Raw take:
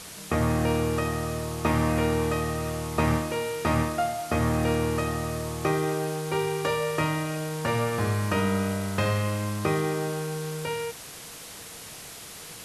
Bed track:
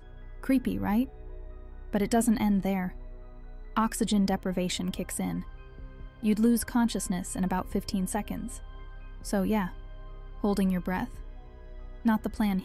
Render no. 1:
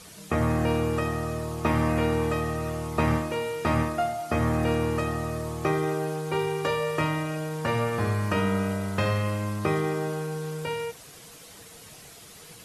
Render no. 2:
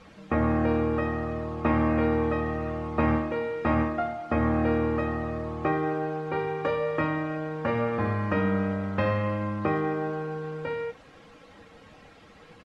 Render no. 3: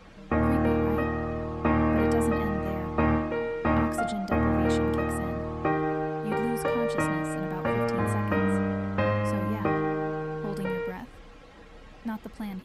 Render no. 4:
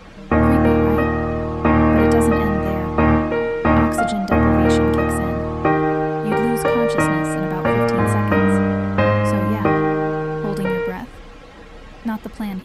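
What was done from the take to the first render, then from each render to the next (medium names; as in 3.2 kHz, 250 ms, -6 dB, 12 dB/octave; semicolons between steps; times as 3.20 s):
noise reduction 8 dB, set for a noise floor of -43 dBFS
low-pass 2.1 kHz 12 dB/octave; comb 3.7 ms, depth 47%
add bed track -8.5 dB
trim +9.5 dB; peak limiter -3 dBFS, peak gain reduction 1.5 dB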